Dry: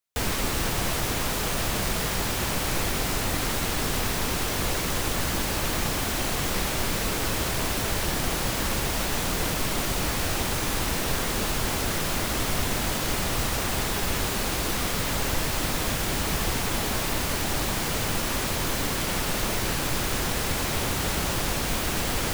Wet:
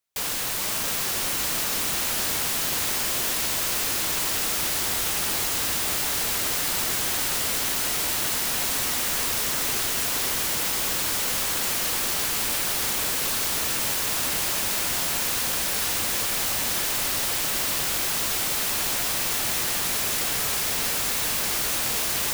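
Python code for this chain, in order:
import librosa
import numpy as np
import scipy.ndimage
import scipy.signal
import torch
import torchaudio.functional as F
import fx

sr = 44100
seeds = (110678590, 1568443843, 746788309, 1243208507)

y = (np.mod(10.0 ** (25.5 / 20.0) * x + 1.0, 2.0) - 1.0) / 10.0 ** (25.5 / 20.0)
y = fx.echo_diffused(y, sr, ms=537, feedback_pct=73, wet_db=-5)
y = F.gain(torch.from_numpy(y), 2.5).numpy()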